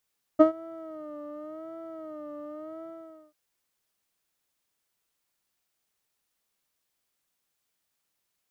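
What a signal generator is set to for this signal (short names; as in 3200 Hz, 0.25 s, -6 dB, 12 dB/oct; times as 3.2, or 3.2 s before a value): synth patch with vibrato D#5, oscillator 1 triangle, oscillator 2 sine, interval +12 st, detune 12 cents, oscillator 2 level -5 dB, sub -13 dB, noise -24 dB, filter bandpass, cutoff 140 Hz, Q 1.6, filter envelope 1 oct, filter decay 0.05 s, filter sustain 5%, attack 22 ms, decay 0.11 s, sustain -23 dB, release 0.51 s, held 2.43 s, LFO 0.89 Hz, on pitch 94 cents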